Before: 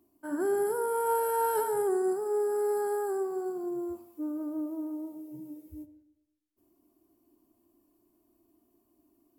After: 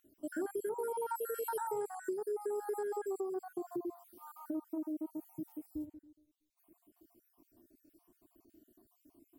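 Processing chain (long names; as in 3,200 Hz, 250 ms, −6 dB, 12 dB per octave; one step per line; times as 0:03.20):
time-frequency cells dropped at random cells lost 54%
downward compressor 4 to 1, threshold −43 dBFS, peak gain reduction 14 dB
level +6 dB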